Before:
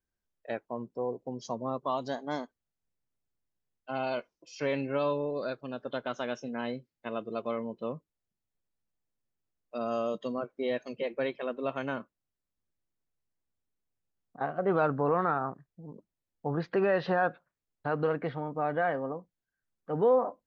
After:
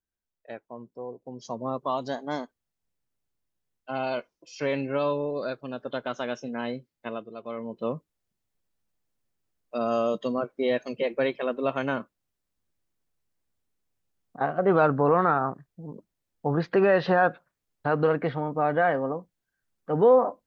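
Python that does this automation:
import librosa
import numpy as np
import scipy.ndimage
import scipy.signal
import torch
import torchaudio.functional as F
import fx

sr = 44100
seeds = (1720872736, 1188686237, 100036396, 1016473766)

y = fx.gain(x, sr, db=fx.line((1.18, -4.5), (1.66, 3.0), (7.09, 3.0), (7.34, -6.5), (7.87, 6.0)))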